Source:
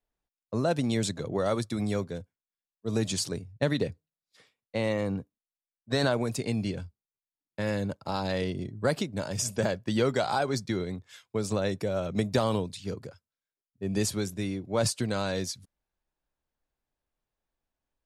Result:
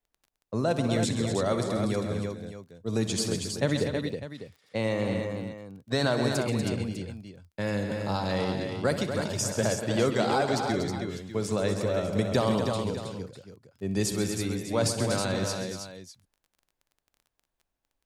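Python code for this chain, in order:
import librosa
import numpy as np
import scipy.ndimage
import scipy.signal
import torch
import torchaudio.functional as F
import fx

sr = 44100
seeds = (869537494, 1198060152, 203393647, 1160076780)

y = fx.echo_multitap(x, sr, ms=(63, 133, 172, 240, 319, 600), db=(-13.5, -11.0, -19.5, -8.5, -6.0, -13.5))
y = fx.dmg_crackle(y, sr, seeds[0], per_s=19.0, level_db=-47.0)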